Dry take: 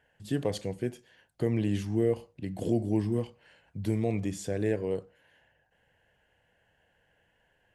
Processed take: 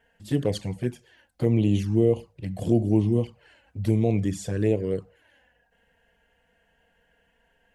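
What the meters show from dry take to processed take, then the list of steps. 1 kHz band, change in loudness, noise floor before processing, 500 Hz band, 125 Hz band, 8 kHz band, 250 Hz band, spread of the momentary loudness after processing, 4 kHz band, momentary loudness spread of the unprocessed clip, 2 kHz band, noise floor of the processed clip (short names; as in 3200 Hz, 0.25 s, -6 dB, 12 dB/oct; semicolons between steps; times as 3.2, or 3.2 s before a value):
+2.5 dB, +6.0 dB, -71 dBFS, +4.5 dB, +7.5 dB, +3.0 dB, +6.0 dB, 11 LU, +4.0 dB, 9 LU, +1.5 dB, -68 dBFS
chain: low shelf 130 Hz +3.5 dB; envelope flanger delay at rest 4.4 ms, full sweep at -23 dBFS; gain +6 dB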